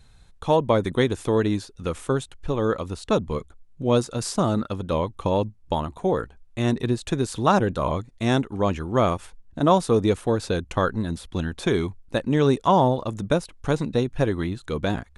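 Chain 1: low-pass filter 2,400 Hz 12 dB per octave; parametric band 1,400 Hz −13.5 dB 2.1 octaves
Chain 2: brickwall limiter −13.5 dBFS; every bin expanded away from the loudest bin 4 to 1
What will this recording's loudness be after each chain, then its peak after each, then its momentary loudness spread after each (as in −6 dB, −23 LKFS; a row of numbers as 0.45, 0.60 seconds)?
−27.5, −34.5 LKFS; −10.5, −13.5 dBFS; 8, 19 LU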